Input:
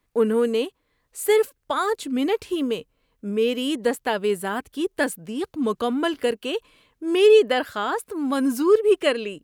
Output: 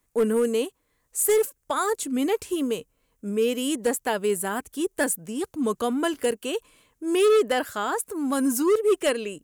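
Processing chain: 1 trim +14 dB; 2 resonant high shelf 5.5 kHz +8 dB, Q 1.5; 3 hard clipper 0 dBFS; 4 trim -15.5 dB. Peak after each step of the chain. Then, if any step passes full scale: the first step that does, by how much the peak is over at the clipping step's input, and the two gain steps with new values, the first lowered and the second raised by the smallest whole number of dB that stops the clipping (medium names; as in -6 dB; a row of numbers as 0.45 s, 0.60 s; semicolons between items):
+7.5 dBFS, +7.5 dBFS, 0.0 dBFS, -15.5 dBFS; step 1, 7.5 dB; step 1 +6 dB, step 4 -7.5 dB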